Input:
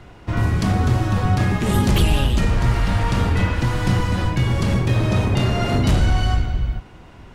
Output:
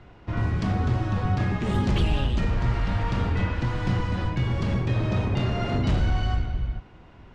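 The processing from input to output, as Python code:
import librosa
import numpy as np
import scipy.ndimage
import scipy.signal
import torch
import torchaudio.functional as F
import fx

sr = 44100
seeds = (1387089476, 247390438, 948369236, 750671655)

y = fx.air_absorb(x, sr, metres=110.0)
y = y * librosa.db_to_amplitude(-6.0)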